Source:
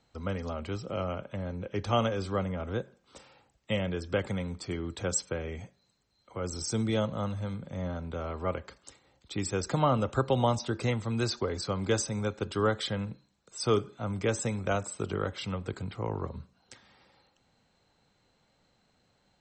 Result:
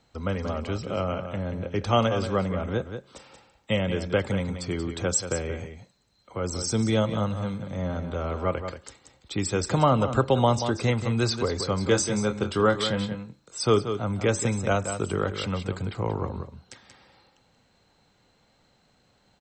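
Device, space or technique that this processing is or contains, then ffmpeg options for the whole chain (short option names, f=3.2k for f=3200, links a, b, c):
ducked delay: -filter_complex "[0:a]asettb=1/sr,asplit=3[a][b][c];[a]atrim=end=11.834[d];[b]atrim=start=11.83:end=13.59,asetpts=PTS-STARTPTS,afade=t=in:d=0.004:c=qsin,afade=t=out:st=1.756:d=0.004:c=qsin,asplit=2[e][f];[f]adelay=24,volume=-8dB[g];[e][g]amix=inputs=2:normalize=0,atrim=end_sample=77616[h];[c]atrim=start=13.586[i];[d][h]acrossfade=d=0.004:c1=hsin:c2=qsin[j];[j][i]acrossfade=d=0.004:c1=qsin:c2=hsin,asplit=3[k][l][m];[l]adelay=182,volume=-8.5dB[n];[m]apad=whole_len=863709[o];[n][o]sidechaincompress=threshold=-31dB:ratio=8:attack=43:release=168[p];[k][p]amix=inputs=2:normalize=0,volume=5dB"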